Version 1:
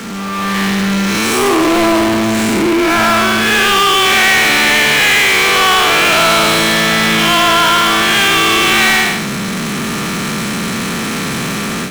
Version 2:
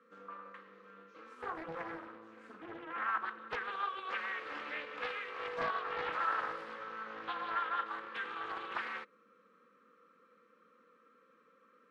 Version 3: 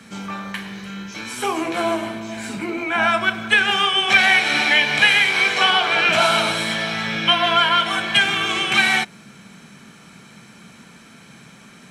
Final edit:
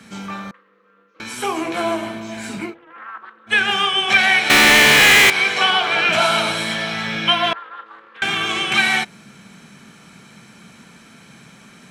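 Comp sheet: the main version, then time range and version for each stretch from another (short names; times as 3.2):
3
0.51–1.2 from 2
2.7–3.51 from 2, crossfade 0.10 s
4.5–5.3 from 1
7.53–8.22 from 2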